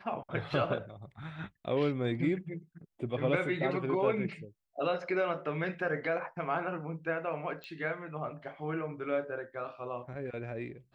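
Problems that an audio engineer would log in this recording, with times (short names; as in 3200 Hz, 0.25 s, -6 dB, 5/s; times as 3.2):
7.64 pop -29 dBFS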